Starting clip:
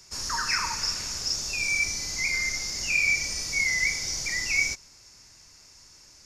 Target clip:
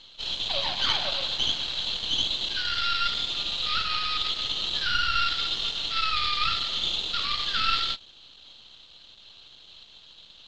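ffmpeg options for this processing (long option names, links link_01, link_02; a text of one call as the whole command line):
ffmpeg -i in.wav -af "asetrate=26328,aresample=44100,aeval=exprs='max(val(0),0)':channel_layout=same,lowpass=frequency=4100:width_type=q:width=3.6" out.wav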